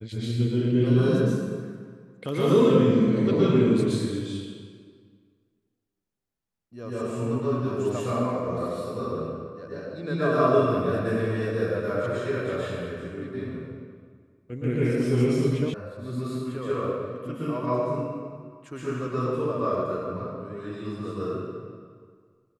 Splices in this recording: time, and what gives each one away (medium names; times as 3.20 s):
15.74 s: sound stops dead